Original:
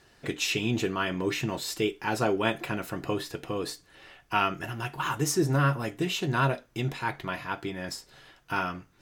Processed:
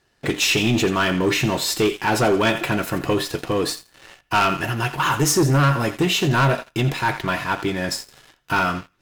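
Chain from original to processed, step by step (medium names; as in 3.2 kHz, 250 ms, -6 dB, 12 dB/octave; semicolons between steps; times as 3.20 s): thinning echo 84 ms, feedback 41%, high-pass 910 Hz, level -12 dB; waveshaping leveller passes 3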